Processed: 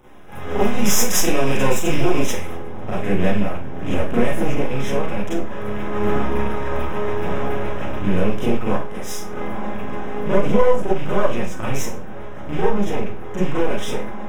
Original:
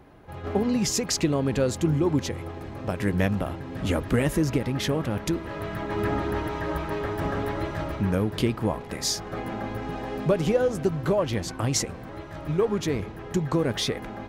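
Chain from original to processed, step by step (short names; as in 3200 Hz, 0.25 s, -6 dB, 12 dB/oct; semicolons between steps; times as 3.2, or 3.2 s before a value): rattling part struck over -28 dBFS, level -25 dBFS; high shelf 2000 Hz +5 dB, from 2.53 s -9 dB; half-wave rectifier; Butterworth band-stop 4400 Hz, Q 3.1; Schroeder reverb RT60 0.32 s, combs from 30 ms, DRR -8.5 dB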